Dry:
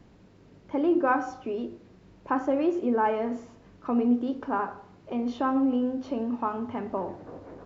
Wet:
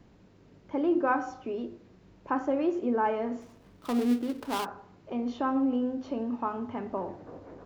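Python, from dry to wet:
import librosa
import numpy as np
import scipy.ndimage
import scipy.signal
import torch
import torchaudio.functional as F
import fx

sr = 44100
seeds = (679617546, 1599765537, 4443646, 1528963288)

y = fx.dead_time(x, sr, dead_ms=0.19, at=(3.4, 4.64), fade=0.02)
y = y * 10.0 ** (-2.5 / 20.0)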